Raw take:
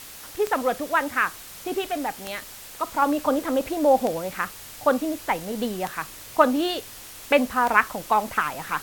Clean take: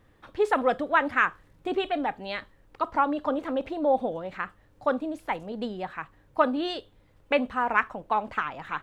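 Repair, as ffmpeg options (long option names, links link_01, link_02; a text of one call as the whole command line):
ffmpeg -i in.wav -af "adeclick=threshold=4,afwtdn=0.0089,asetnsamples=nb_out_samples=441:pad=0,asendcmd='3.02 volume volume -5dB',volume=0dB" out.wav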